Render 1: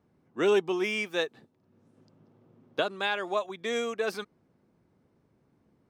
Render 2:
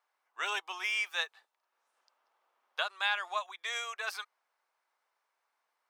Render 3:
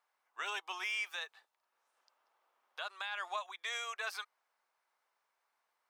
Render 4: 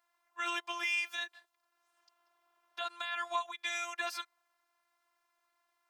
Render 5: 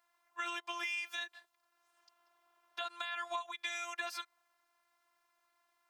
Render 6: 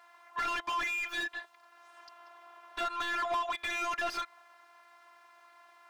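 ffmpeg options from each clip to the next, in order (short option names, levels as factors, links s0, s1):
-af "highpass=f=870:w=0.5412,highpass=f=870:w=1.3066"
-af "alimiter=level_in=1.5:limit=0.0631:level=0:latency=1:release=91,volume=0.668,volume=0.891"
-af "afftfilt=real='hypot(re,im)*cos(PI*b)':imag='0':win_size=512:overlap=0.75,volume=2.24"
-af "acompressor=threshold=0.0141:ratio=4,volume=1.19"
-filter_complex "[0:a]asplit=2[s0][s1];[s1]highpass=f=720:p=1,volume=28.2,asoftclip=type=tanh:threshold=0.075[s2];[s0][s2]amix=inputs=2:normalize=0,lowpass=f=1500:p=1,volume=0.501"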